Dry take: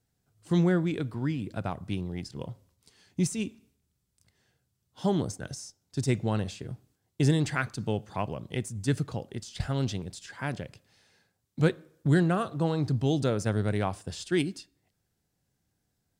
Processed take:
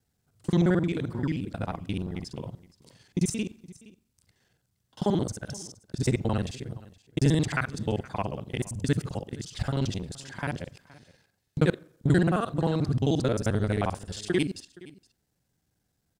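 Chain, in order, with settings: local time reversal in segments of 44 ms; echo 0.469 s -21 dB; gain +1.5 dB

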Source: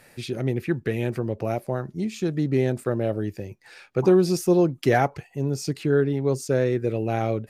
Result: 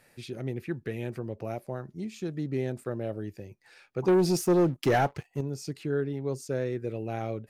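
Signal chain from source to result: 4.08–5.41 sample leveller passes 2; gain -8.5 dB

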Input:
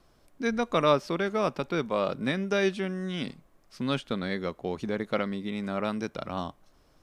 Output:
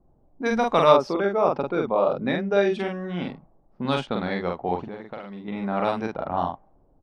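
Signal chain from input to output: 0.92–2.8 formant sharpening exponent 1.5; low-pass opened by the level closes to 360 Hz, open at -22.5 dBFS; bell 820 Hz +11.5 dB 0.6 oct; 4.78–5.48 compressor 8:1, threshold -36 dBFS, peak gain reduction 16.5 dB; doubler 45 ms -3 dB; gain +1.5 dB

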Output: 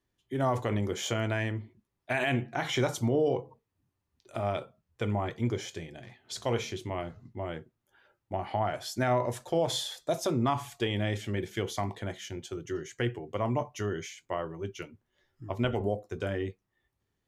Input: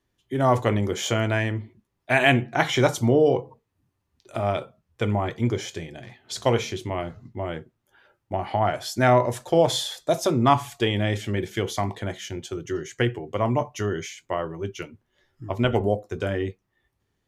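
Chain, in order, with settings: limiter -12 dBFS, peak gain reduction 8 dB; gain -6 dB

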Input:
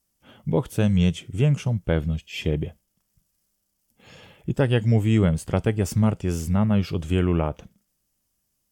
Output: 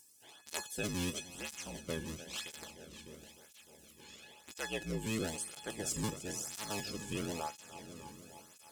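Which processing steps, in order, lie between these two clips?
cycle switcher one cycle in 2, inverted; bell 7800 Hz +14.5 dB 2.3 oct; upward compressor, threshold -34 dBFS; resonator 850 Hz, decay 0.4 s, mix 90%; multi-head echo 0.302 s, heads first and second, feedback 59%, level -15 dB; tape flanging out of phase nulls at 0.99 Hz, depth 1.6 ms; gain +4.5 dB

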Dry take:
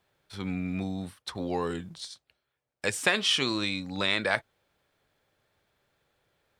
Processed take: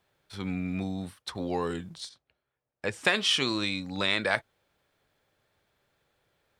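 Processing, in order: 2.09–3.05 LPF 1600 Hz 6 dB/oct

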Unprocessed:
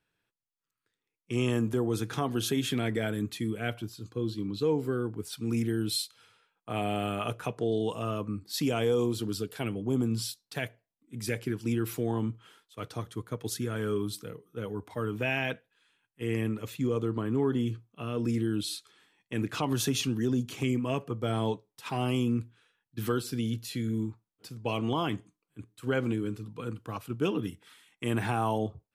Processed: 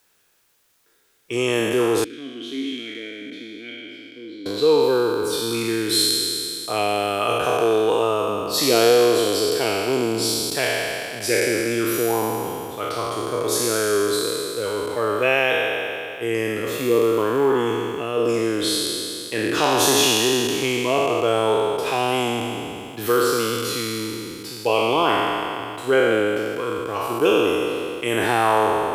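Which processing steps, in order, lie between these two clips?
spectral trails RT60 2.72 s; resonant low shelf 290 Hz -10 dB, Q 1.5; requantised 12-bit, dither triangular; 2.04–4.46 vowel filter i; gain +8 dB

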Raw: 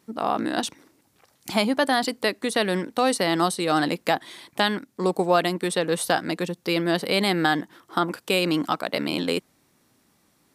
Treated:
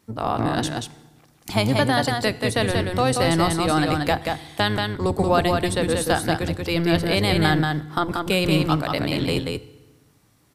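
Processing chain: octaver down 1 oct, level +1 dB; echo 0.183 s -4 dB; FDN reverb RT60 1.2 s, low-frequency decay 1.45×, high-frequency decay 0.85×, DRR 16 dB

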